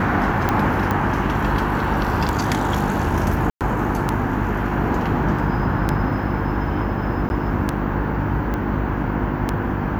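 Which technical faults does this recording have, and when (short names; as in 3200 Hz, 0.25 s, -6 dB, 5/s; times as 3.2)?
hum 50 Hz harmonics 7 -25 dBFS
tick 33 1/3 rpm -6 dBFS
0.91 pop -10 dBFS
3.5–3.61 gap 0.108 s
7.29–7.3 gap
8.54 pop -14 dBFS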